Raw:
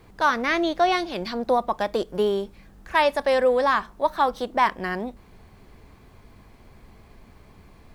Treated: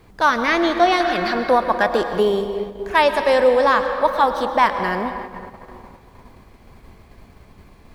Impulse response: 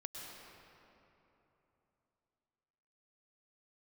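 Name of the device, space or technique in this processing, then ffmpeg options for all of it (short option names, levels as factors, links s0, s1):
keyed gated reverb: -filter_complex "[0:a]asplit=3[s0][s1][s2];[1:a]atrim=start_sample=2205[s3];[s1][s3]afir=irnorm=-1:irlink=0[s4];[s2]apad=whole_len=350561[s5];[s4][s5]sidechaingate=range=0.355:threshold=0.00398:ratio=16:detection=peak,volume=1.19[s6];[s0][s6]amix=inputs=2:normalize=0,asettb=1/sr,asplit=3[s7][s8][s9];[s7]atrim=end=1.004[s10];[s8]atrim=start=1:end=2.2,asetpts=PTS-STARTPTS,afade=t=in:d=0.004:c=qsin,afade=t=out:st=1.196:d=0.004:c=qsin,equalizer=f=1600:w=2.5:g=11.5[s11];[s9]atrim=start=2.196[s12];[s10][s11]acrossfade=d=0.004:c1=hsin:c2=qsin[s13];[s13][s12]acrossfade=d=0.004:c1=qsin:c2=hsin"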